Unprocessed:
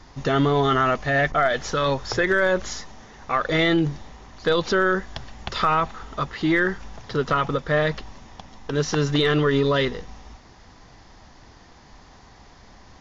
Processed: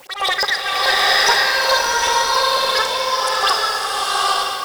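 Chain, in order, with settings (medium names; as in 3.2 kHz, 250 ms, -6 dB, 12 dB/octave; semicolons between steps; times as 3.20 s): LFO band-pass saw up 5 Hz 240–2500 Hz; dynamic bell 320 Hz, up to +5 dB, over -37 dBFS, Q 2.2; in parallel at +2.5 dB: peak limiter -21.5 dBFS, peak gain reduction 10 dB; on the sum: overload inside the chain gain 17 dB; peaking EQ 190 Hz +14.5 dB 0.26 oct; on a send: two-band feedback delay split 660 Hz, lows 156 ms, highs 108 ms, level -11.5 dB; on the sum: word length cut 8-bit, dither triangular; slow attack 322 ms; wide varispeed 2.8×; swelling reverb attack 870 ms, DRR -6 dB; trim +3.5 dB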